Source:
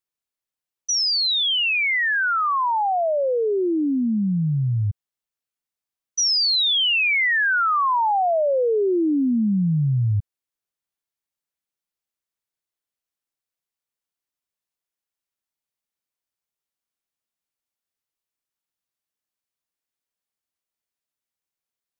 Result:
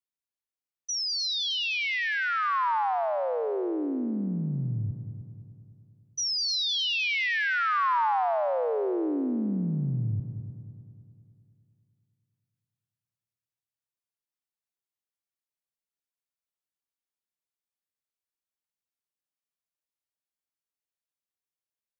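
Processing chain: multi-head echo 0.102 s, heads second and third, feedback 52%, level -11.5 dB; dynamic EQ 980 Hz, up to +4 dB, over -32 dBFS, Q 1.5; gain -9 dB

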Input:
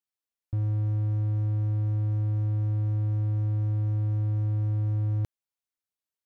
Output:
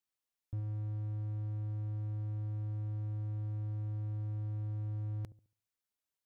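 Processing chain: limiter -31 dBFS, peak gain reduction 10 dB; dark delay 70 ms, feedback 31%, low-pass 520 Hz, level -14.5 dB

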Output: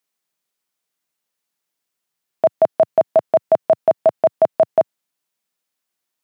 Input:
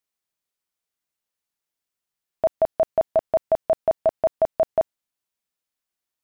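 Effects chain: HPF 120 Hz 24 dB/oct; gain +6 dB

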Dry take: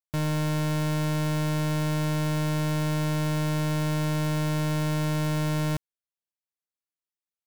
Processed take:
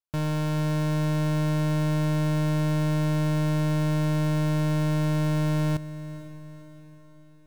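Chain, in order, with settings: high shelf 4500 Hz -6 dB; notch 2000 Hz, Q 7.7; on a send: diffused feedback echo 0.488 s, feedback 50%, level -15.5 dB

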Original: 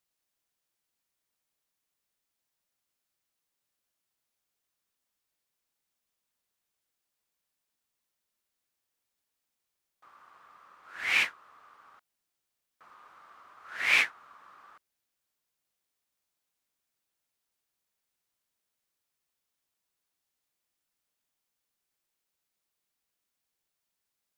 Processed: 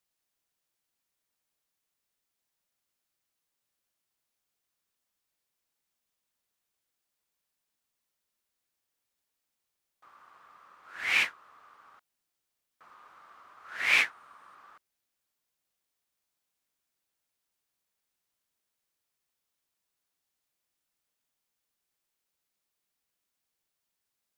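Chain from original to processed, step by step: 14.11–14.55 bell 9000 Hz +9.5 dB 0.22 oct

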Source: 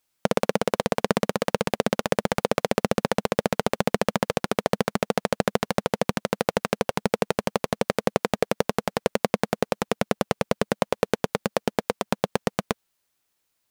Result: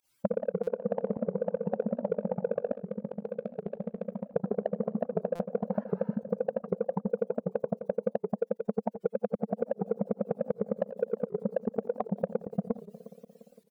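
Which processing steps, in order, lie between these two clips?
spectral contrast raised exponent 3.1; on a send: tape echo 0.176 s, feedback 76%, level -19 dB, low-pass 1400 Hz; 5.76–6.13 on the sum: spectral repair 810–10000 Hz after; in parallel at -3.5 dB: soft clip -17.5 dBFS, distortion -11 dB; 2.72–4.35 on the sum: pre-emphasis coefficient 0.8; pump 154 bpm, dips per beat 1, -22 dB, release 99 ms; dynamic EQ 880 Hz, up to +5 dB, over -37 dBFS, Q 1.8; compressor, threshold -25 dBFS, peak gain reduction 12 dB; feedback echo 87 ms, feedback 46%, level -17 dB; stuck buffer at 0.63/5.35, samples 256, times 6; record warp 78 rpm, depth 160 cents; gain -1 dB

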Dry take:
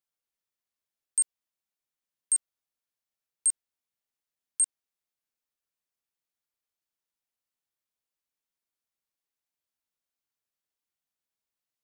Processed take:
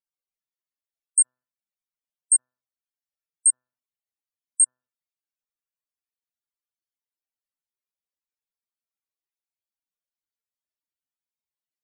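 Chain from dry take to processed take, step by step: de-hum 126.1 Hz, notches 14; loudest bins only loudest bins 64; upward expander 1.5:1, over -36 dBFS; gain +7.5 dB

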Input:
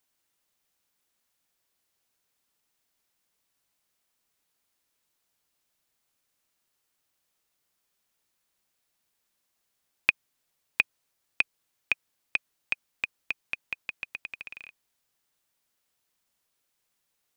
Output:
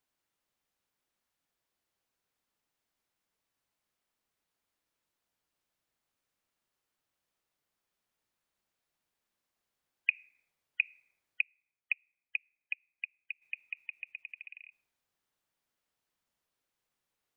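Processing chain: spectral gate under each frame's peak -20 dB strong; high shelf 3700 Hz -8.5 dB; reverb RT60 1.3 s, pre-delay 18 ms, DRR 19.5 dB; 11.41–13.42 upward expander 1.5:1, over -50 dBFS; gain -3 dB

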